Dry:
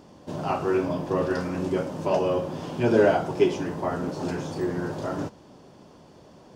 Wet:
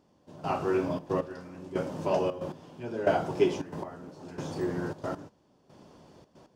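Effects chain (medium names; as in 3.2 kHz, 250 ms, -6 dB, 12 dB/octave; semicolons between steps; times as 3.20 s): trance gate "....xxxxx.x." 137 bpm -12 dB; trim -3.5 dB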